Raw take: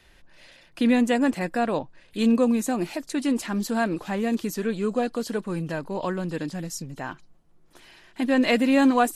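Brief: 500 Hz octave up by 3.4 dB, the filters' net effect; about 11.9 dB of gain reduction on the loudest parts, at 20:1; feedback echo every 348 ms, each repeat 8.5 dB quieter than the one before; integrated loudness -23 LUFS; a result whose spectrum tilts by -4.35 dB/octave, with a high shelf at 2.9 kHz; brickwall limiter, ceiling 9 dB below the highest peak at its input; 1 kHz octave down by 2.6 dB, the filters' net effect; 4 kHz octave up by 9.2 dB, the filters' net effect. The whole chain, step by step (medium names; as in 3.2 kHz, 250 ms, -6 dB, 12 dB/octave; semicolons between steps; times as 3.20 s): peaking EQ 500 Hz +5.5 dB; peaking EQ 1 kHz -8.5 dB; treble shelf 2.9 kHz +4 dB; peaking EQ 4 kHz +9 dB; compression 20:1, threshold -25 dBFS; peak limiter -24.5 dBFS; feedback delay 348 ms, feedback 38%, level -8.5 dB; trim +9.5 dB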